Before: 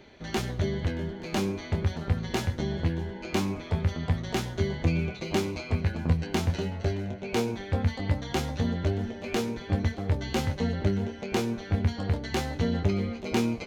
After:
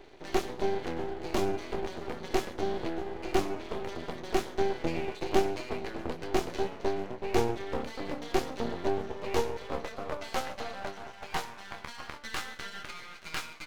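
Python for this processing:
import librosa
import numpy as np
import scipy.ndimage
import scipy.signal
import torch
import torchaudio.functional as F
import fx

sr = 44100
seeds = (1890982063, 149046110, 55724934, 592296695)

y = fx.filter_sweep_highpass(x, sr, from_hz=360.0, to_hz=1400.0, start_s=8.81, end_s=12.65, q=2.8)
y = np.maximum(y, 0.0)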